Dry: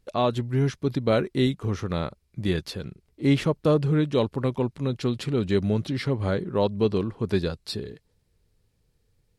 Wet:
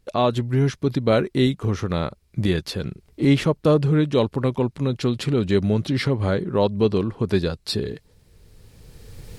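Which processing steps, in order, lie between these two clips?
recorder AGC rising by 14 dB/s; trim +3.5 dB

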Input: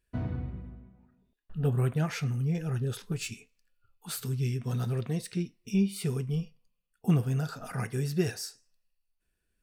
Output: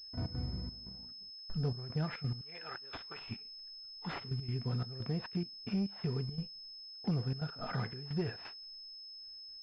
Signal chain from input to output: 2.41–3.21 s: high-pass 1.1 kHz 12 dB/octave; waveshaping leveller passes 1; compression 2.5:1, threshold -43 dBFS, peak gain reduction 15.5 dB; trance gate "x.x.xxxx..xx" 174 bpm -12 dB; class-D stage that switches slowly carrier 5.2 kHz; trim +4 dB

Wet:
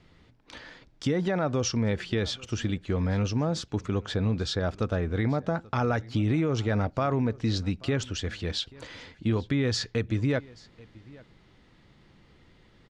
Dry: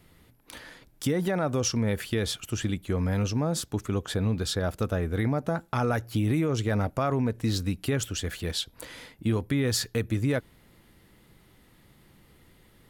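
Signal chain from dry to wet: low-pass 6 kHz 24 dB/octave; on a send: delay 834 ms -23 dB

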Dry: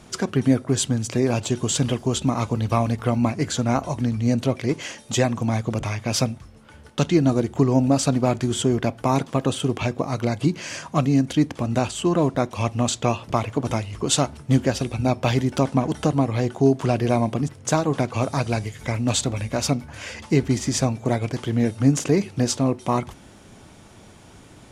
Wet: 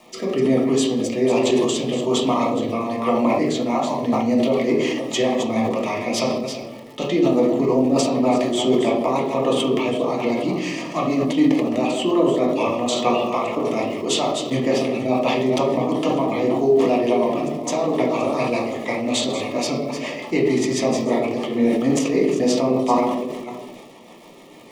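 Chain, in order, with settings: chunks repeated in reverse 264 ms, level -10 dB; high-pass 140 Hz 24 dB/octave; tone controls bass -15 dB, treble -7 dB; compression, threshold -21 dBFS, peak gain reduction 5.5 dB; rotary cabinet horn 1.2 Hz, later 6.7 Hz, at 3.63 s; crackle 390 per s -47 dBFS; Butterworth band-stop 1.5 kHz, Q 3.2; reverberation RT60 0.90 s, pre-delay 3 ms, DRR -2.5 dB; decay stretcher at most 34 dB/s; trim +3.5 dB

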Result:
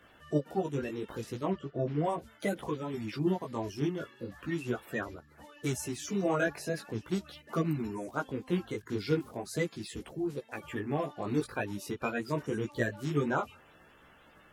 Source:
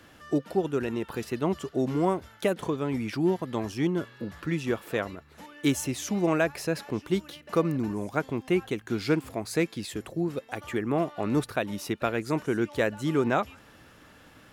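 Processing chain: coarse spectral quantiser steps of 30 dB; 1.50–2.05 s: low-pass 2.5 kHz 12 dB/octave; chorus voices 2, 0.39 Hz, delay 17 ms, depth 4.3 ms; trim -2 dB

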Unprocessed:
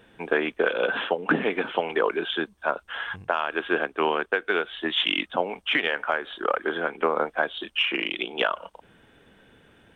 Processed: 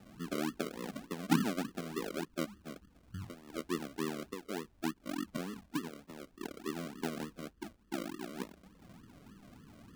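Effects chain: zero-crossing glitches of -15.5 dBFS; inverse Chebyshev low-pass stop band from 1.2 kHz, stop band 70 dB; decimation with a swept rate 40×, swing 60% 3.4 Hz; trim +1.5 dB

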